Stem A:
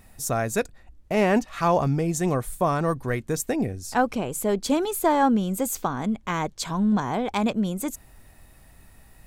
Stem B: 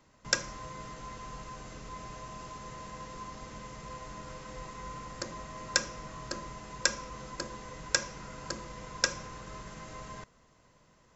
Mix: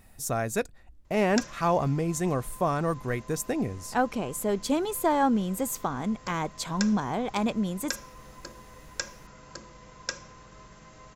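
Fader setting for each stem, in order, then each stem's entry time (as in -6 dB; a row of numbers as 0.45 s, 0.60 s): -3.5 dB, -5.5 dB; 0.00 s, 1.05 s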